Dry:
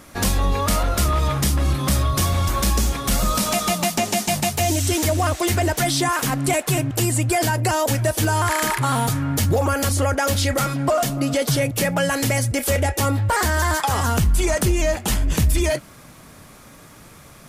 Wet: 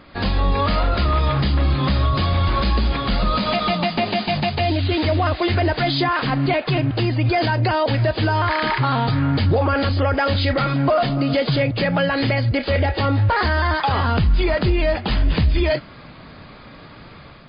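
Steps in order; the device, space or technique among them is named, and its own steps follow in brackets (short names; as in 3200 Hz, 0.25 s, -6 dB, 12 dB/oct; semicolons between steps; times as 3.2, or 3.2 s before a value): low-bitrate web radio (AGC gain up to 5 dB; limiter -10 dBFS, peak gain reduction 5 dB; MP3 24 kbps 11025 Hz)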